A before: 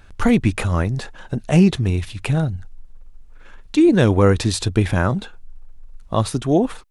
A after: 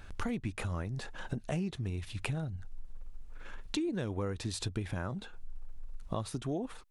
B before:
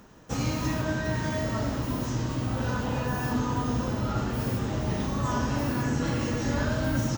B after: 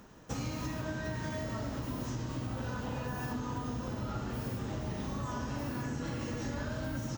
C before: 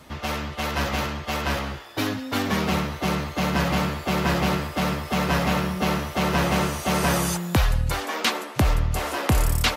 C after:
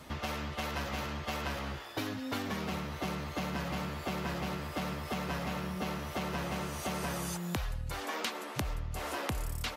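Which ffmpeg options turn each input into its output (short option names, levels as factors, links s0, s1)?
-af "acompressor=threshold=0.0282:ratio=6,volume=0.75"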